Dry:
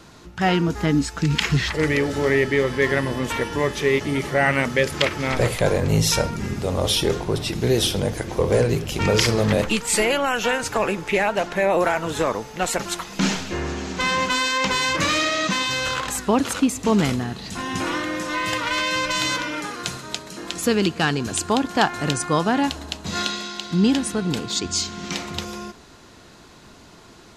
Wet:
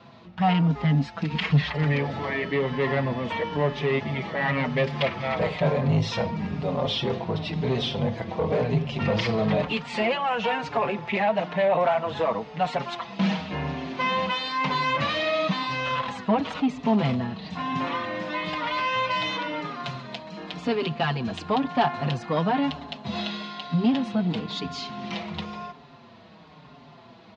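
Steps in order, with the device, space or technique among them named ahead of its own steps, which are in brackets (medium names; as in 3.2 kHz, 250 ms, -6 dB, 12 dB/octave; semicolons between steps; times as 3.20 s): barber-pole flanger into a guitar amplifier (endless flanger 5.4 ms -1 Hz; saturation -17.5 dBFS, distortion -15 dB; cabinet simulation 110–3900 Hz, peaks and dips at 150 Hz +8 dB, 230 Hz +4 dB, 340 Hz -7 dB, 680 Hz +6 dB, 1 kHz +4 dB, 1.5 kHz -5 dB)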